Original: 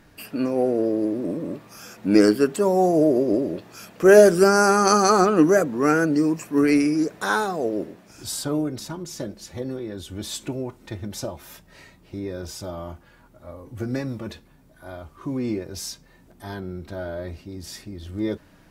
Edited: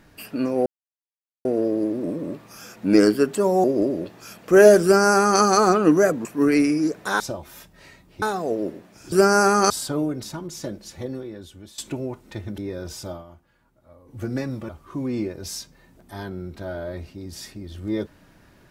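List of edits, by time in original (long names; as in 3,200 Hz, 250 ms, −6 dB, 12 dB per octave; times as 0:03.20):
0:00.66: splice in silence 0.79 s
0:02.85–0:03.16: remove
0:04.35–0:04.93: duplicate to 0:08.26
0:05.77–0:06.41: remove
0:09.56–0:10.34: fade out, to −18 dB
0:11.14–0:12.16: move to 0:07.36
0:12.69–0:13.76: duck −11 dB, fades 0.13 s
0:14.27–0:15.00: remove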